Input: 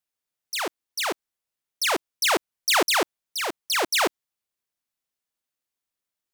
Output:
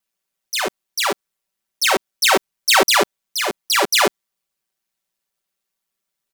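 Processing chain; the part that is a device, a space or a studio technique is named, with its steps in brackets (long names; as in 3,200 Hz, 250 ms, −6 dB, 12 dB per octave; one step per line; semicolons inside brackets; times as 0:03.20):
ring-modulated robot voice (ring modulation 58 Hz; comb filter 5.2 ms, depth 83%)
level +7.5 dB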